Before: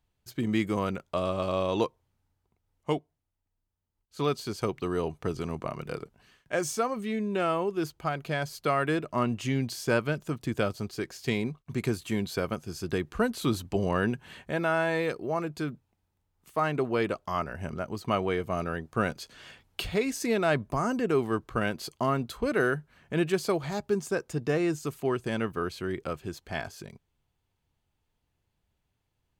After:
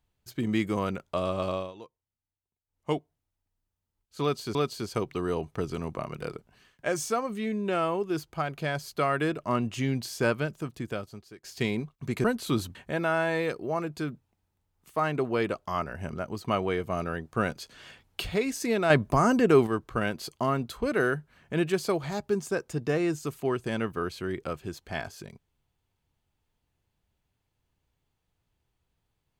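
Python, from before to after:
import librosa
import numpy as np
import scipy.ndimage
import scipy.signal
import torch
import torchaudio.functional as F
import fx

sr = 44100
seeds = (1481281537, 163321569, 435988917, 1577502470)

y = fx.edit(x, sr, fx.fade_down_up(start_s=1.48, length_s=1.44, db=-19.5, fade_s=0.25),
    fx.repeat(start_s=4.22, length_s=0.33, count=2),
    fx.fade_out_to(start_s=10.01, length_s=1.1, floor_db=-21.0),
    fx.cut(start_s=11.91, length_s=1.28),
    fx.cut(start_s=13.7, length_s=0.65),
    fx.clip_gain(start_s=20.5, length_s=0.77, db=6.0), tone=tone)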